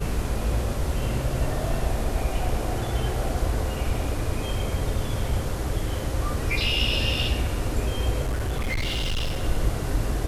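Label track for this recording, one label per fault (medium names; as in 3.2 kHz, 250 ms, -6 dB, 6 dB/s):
8.230000	9.440000	clipped -22.5 dBFS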